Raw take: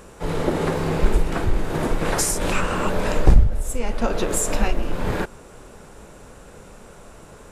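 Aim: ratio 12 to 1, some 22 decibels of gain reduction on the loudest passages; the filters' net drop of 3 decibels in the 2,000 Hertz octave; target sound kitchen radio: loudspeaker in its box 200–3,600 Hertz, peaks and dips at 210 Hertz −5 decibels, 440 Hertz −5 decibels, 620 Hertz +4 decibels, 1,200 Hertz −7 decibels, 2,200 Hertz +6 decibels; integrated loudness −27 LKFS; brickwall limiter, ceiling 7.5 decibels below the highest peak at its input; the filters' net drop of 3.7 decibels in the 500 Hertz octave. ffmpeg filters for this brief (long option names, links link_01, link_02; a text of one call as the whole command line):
ffmpeg -i in.wav -af "equalizer=frequency=500:width_type=o:gain=-3.5,equalizer=frequency=2000:width_type=o:gain=-5.5,acompressor=threshold=-29dB:ratio=12,alimiter=level_in=2dB:limit=-24dB:level=0:latency=1,volume=-2dB,highpass=200,equalizer=frequency=210:width_type=q:width=4:gain=-5,equalizer=frequency=440:width_type=q:width=4:gain=-5,equalizer=frequency=620:width_type=q:width=4:gain=4,equalizer=frequency=1200:width_type=q:width=4:gain=-7,equalizer=frequency=2200:width_type=q:width=4:gain=6,lowpass=frequency=3600:width=0.5412,lowpass=frequency=3600:width=1.3066,volume=16dB" out.wav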